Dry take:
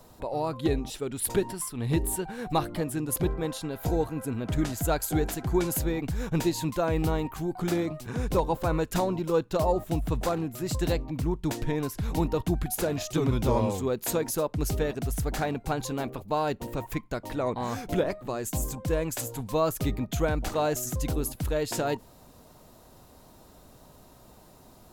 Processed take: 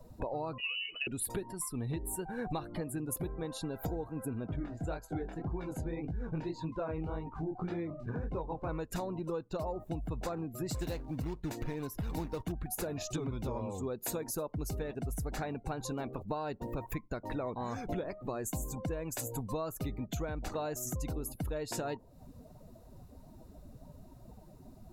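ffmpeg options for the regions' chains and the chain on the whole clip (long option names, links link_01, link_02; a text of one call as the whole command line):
ffmpeg -i in.wav -filter_complex "[0:a]asettb=1/sr,asplit=3[link_01][link_02][link_03];[link_01]atrim=end=0.584[link_04];[link_02]atrim=start=0.58:end=1.07,asetpts=PTS-STARTPTS,afade=type=in:duration=0.004:curve=qsin,afade=type=out:start_time=0.486:duration=0.004:curve=qsin,lowpass=frequency=2600:width_type=q:width=0.5098,lowpass=frequency=2600:width_type=q:width=0.6013,lowpass=frequency=2600:width_type=q:width=0.9,lowpass=frequency=2600:width_type=q:width=2.563,afreqshift=-3000,acompressor=threshold=-28dB:ratio=6:attack=3.2:release=140:knee=1:detection=peak[link_05];[link_03]atrim=start=1.066[link_06];[link_04][link_05]acrossfade=duration=0.004:curve1=hsin:curve2=qsin[link_07];[link_07][link_06]acrossfade=duration=0.004:curve1=qsin:curve2=hsin,asettb=1/sr,asplit=3[link_08][link_09][link_10];[link_08]atrim=end=4.474[link_11];[link_09]atrim=start=4.47:end=8.69,asetpts=PTS-STARTPTS,afade=type=in:duration=0.004:curve=qsin,afade=type=out:start_time=4.216:duration=0.004:curve=qsin,flanger=delay=18:depth=7.9:speed=1.8,adynamicsmooth=sensitivity=7:basefreq=3600[link_12];[link_10]atrim=start=8.686[link_13];[link_11][link_12]acrossfade=duration=0.004:curve1=hsin:curve2=qsin[link_14];[link_14][link_13]acrossfade=duration=0.004:curve1=qsin:curve2=hsin,asettb=1/sr,asplit=3[link_15][link_16][link_17];[link_15]atrim=end=10.694[link_18];[link_16]atrim=start=10.69:end=12.52,asetpts=PTS-STARTPTS,afade=type=in:duration=0.004:curve=qsin,afade=type=out:start_time=1.826:duration=0.004:curve=qsin,equalizer=frequency=13000:width=7.1:gain=3.5,acrusher=bits=3:mode=log:mix=0:aa=0.000001[link_19];[link_17]atrim=start=12.516[link_20];[link_18][link_19]acrossfade=duration=0.004:curve1=hsin:curve2=qsin[link_21];[link_21][link_20]acrossfade=duration=0.004:curve1=qsin:curve2=hsin,afftdn=noise_reduction=18:noise_floor=-45,bandreject=frequency=3200:width=13,acompressor=threshold=-40dB:ratio=10,volume=6dB" out.wav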